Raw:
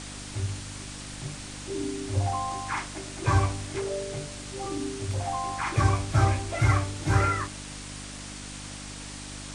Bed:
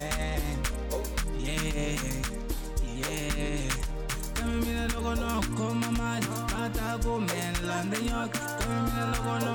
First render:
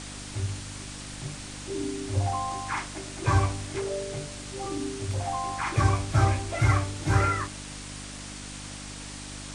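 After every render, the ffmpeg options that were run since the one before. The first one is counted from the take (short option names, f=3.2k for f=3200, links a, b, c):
-af anull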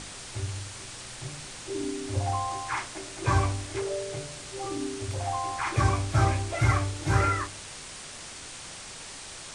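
-af "bandreject=f=50:t=h:w=4,bandreject=f=100:t=h:w=4,bandreject=f=150:t=h:w=4,bandreject=f=200:t=h:w=4,bandreject=f=250:t=h:w=4,bandreject=f=300:t=h:w=4"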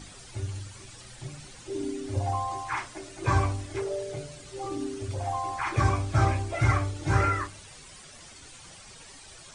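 -af "afftdn=nr=11:nf=-42"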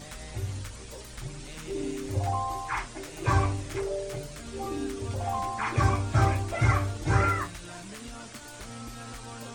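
-filter_complex "[1:a]volume=-13dB[a];[0:a][a]amix=inputs=2:normalize=0"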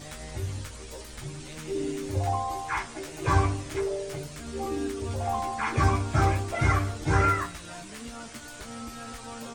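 -filter_complex "[0:a]asplit=2[a][b];[b]adelay=13,volume=-5.5dB[c];[a][c]amix=inputs=2:normalize=0,aecho=1:1:169:0.0794"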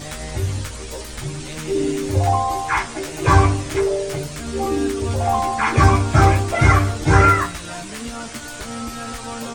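-af "volume=10dB,alimiter=limit=-1dB:level=0:latency=1"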